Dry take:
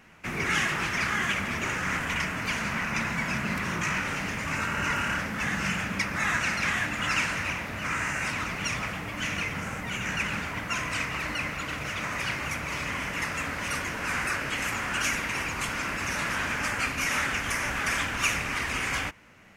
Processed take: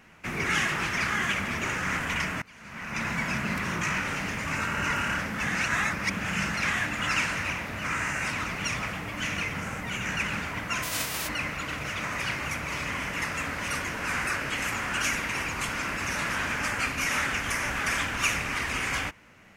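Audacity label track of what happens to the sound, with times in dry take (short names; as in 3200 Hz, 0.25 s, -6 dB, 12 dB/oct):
2.420000	3.080000	fade in quadratic, from -24 dB
5.550000	6.540000	reverse
10.820000	11.270000	spectral whitening exponent 0.3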